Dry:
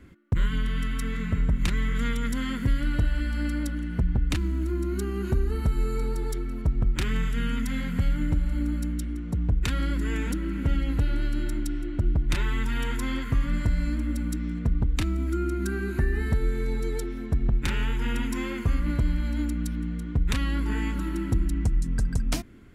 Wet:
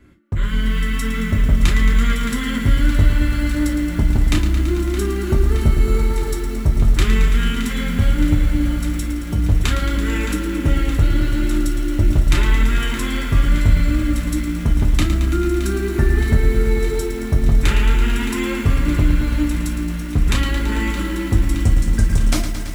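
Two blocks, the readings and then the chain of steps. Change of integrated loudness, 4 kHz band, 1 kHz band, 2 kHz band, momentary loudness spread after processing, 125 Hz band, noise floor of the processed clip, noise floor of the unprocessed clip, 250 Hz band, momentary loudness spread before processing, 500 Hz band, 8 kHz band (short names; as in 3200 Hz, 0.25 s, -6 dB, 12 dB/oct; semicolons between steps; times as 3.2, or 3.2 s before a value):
+9.0 dB, +10.5 dB, +9.0 dB, +9.5 dB, 5 LU, +9.0 dB, -24 dBFS, -33 dBFS, +8.5 dB, 4 LU, +9.5 dB, +11.0 dB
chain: AGC gain up to 7 dB; on a send: thinning echo 0.619 s, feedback 77%, high-pass 420 Hz, level -12 dB; on the sum: non-linear reverb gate 80 ms falling, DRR 1 dB; lo-fi delay 0.111 s, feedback 80%, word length 6-bit, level -9.5 dB; gain -1 dB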